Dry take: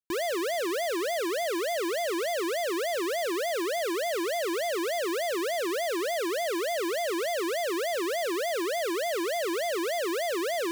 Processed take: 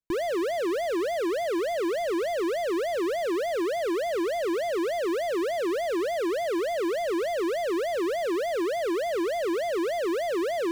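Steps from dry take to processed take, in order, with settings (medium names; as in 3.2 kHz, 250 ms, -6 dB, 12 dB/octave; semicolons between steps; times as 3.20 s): tilt EQ -2.5 dB/octave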